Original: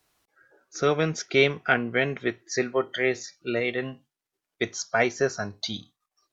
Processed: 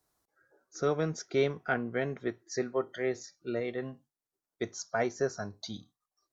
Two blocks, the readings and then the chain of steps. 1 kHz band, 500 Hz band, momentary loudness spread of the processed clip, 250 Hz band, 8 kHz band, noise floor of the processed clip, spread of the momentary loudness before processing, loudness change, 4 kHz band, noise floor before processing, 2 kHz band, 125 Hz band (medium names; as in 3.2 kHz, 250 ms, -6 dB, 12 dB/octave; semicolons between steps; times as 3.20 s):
-7.0 dB, -6.0 dB, 10 LU, -5.5 dB, no reading, under -85 dBFS, 11 LU, -7.5 dB, -12.5 dB, under -85 dBFS, -11.5 dB, -5.5 dB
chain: peaking EQ 2.7 kHz -12.5 dB 1.1 oct; trim -5.5 dB